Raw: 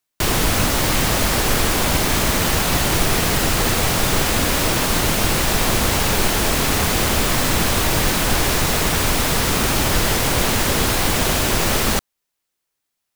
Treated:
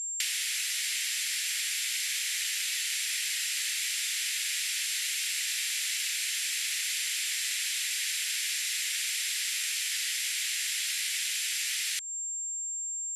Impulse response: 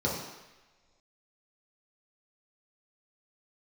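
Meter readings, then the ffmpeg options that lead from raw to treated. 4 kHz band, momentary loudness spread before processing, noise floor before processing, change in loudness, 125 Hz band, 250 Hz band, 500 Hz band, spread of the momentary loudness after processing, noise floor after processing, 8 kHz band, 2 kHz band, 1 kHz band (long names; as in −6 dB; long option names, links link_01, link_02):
−8.0 dB, 0 LU, −78 dBFS, −11.0 dB, below −40 dB, below −40 dB, below −40 dB, 0 LU, −35 dBFS, −6.5 dB, −11.0 dB, −36.0 dB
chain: -af "aeval=exprs='val(0)+0.0251*sin(2*PI*7400*n/s)':channel_layout=same,asuperpass=centerf=5300:order=12:qfactor=0.52,acompressor=threshold=-28dB:ratio=12"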